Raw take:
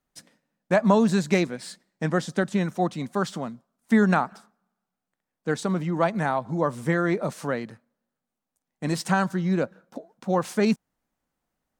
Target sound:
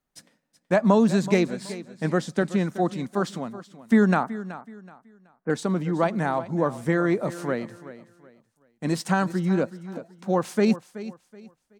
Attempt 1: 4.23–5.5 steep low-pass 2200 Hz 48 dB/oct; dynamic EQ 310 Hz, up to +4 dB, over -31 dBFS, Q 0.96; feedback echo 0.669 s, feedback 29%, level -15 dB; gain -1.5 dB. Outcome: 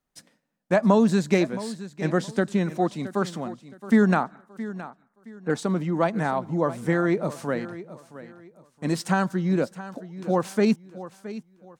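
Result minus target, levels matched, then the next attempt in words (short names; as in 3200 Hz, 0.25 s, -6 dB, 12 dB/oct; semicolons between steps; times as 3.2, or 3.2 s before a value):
echo 0.293 s late
4.23–5.5 steep low-pass 2200 Hz 48 dB/oct; dynamic EQ 310 Hz, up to +4 dB, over -31 dBFS, Q 0.96; feedback echo 0.376 s, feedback 29%, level -15 dB; gain -1.5 dB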